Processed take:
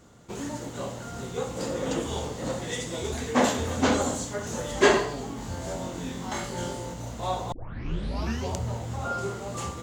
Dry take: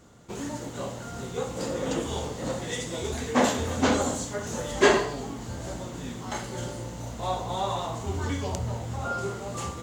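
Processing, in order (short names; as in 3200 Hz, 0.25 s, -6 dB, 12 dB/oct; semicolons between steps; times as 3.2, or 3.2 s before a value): 5.35–6.94 flutter echo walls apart 3.9 m, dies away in 0.29 s; 7.52 tape start 0.98 s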